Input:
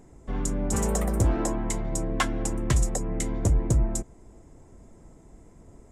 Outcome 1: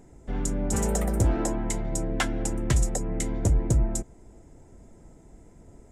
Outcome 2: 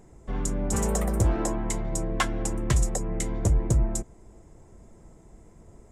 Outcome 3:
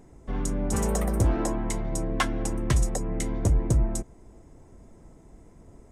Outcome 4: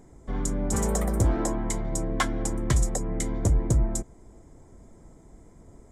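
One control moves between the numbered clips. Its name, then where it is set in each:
notch filter, centre frequency: 1,100, 270, 7,300, 2,700 Hertz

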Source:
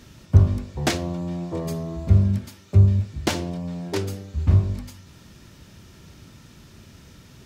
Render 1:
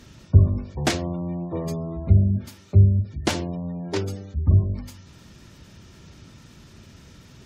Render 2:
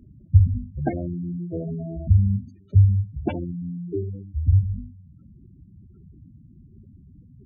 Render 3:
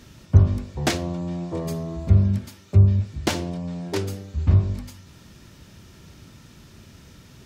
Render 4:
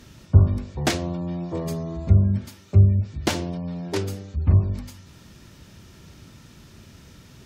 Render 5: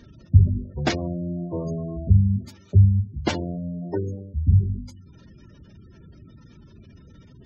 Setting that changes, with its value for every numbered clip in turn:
gate on every frequency bin, under each frame's peak: −35, −10, −60, −45, −20 decibels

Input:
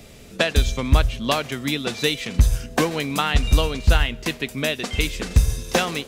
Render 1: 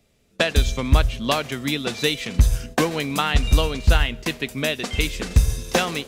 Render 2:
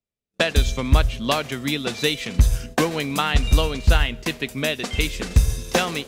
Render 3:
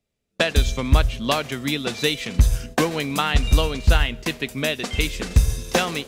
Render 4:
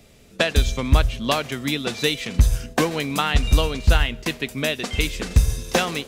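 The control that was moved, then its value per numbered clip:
noise gate, range: −19, −48, −35, −7 decibels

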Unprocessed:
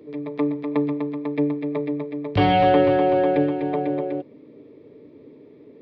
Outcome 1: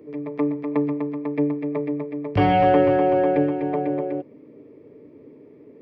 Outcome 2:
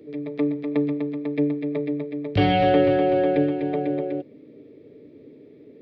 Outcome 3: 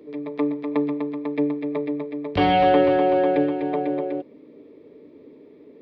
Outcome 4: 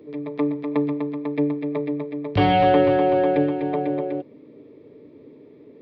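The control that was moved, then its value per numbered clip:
parametric band, centre frequency: 3,800, 1,000, 120, 12,000 Hertz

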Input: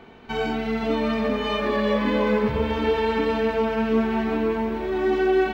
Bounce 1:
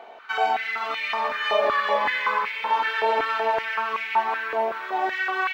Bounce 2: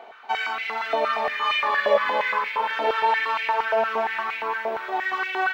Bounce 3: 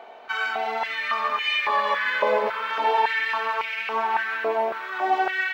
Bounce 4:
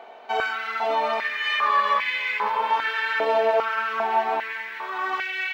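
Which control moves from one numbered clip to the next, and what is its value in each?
high-pass on a step sequencer, speed: 5.3, 8.6, 3.6, 2.5 Hertz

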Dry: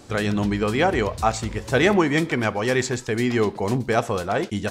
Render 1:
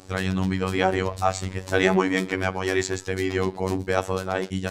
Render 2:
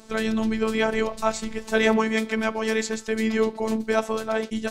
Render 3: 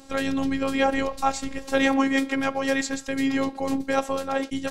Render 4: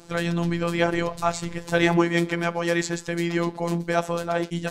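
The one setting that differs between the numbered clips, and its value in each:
phases set to zero, frequency: 94, 220, 270, 170 Hertz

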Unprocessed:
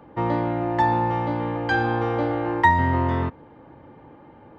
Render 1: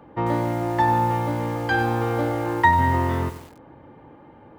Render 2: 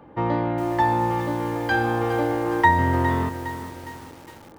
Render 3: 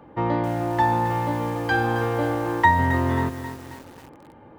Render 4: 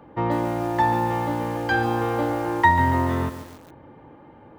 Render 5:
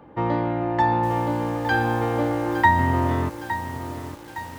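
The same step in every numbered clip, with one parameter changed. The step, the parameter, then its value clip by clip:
feedback echo at a low word length, delay time: 94, 410, 268, 141, 862 milliseconds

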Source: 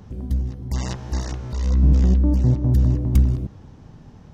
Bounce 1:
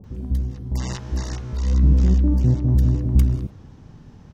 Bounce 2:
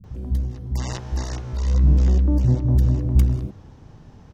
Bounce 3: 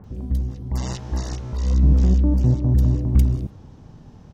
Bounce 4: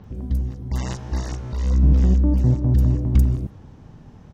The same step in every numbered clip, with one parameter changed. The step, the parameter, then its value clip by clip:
multiband delay without the direct sound, split: 680, 200, 1,900, 5,000 Hertz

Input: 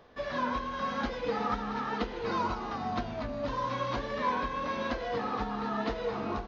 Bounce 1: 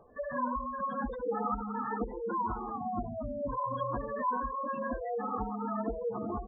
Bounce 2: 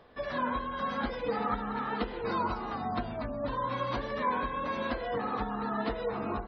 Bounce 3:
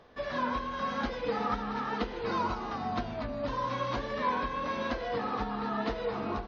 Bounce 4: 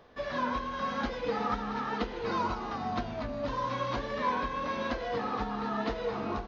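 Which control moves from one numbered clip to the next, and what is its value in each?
gate on every frequency bin, under each frame's peak: −10, −30, −45, −60 decibels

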